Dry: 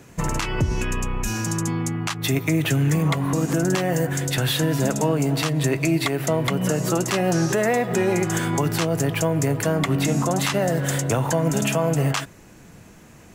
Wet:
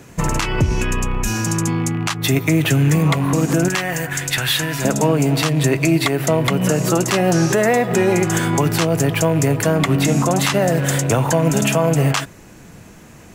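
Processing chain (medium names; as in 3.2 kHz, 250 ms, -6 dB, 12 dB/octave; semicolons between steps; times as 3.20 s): rattle on loud lows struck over -23 dBFS, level -32 dBFS; 3.68–4.85 s: ten-band graphic EQ 125 Hz -6 dB, 250 Hz -8 dB, 500 Hz -8 dB, 2 kHz +4 dB; trim +5 dB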